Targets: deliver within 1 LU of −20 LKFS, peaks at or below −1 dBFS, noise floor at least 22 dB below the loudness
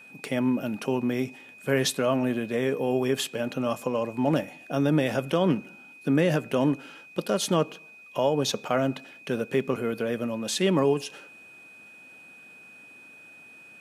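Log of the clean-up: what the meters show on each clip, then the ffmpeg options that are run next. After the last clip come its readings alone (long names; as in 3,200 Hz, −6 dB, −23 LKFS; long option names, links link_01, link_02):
interfering tone 2,500 Hz; level of the tone −47 dBFS; integrated loudness −27.0 LKFS; sample peak −12.5 dBFS; target loudness −20.0 LKFS
→ -af "bandreject=frequency=2500:width=30"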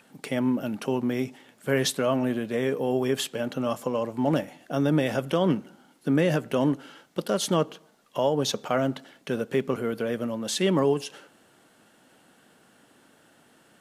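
interfering tone none found; integrated loudness −27.0 LKFS; sample peak −12.5 dBFS; target loudness −20.0 LKFS
→ -af "volume=7dB"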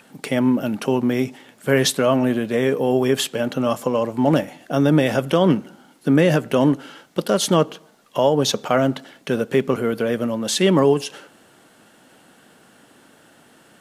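integrated loudness −20.0 LKFS; sample peak −5.5 dBFS; background noise floor −53 dBFS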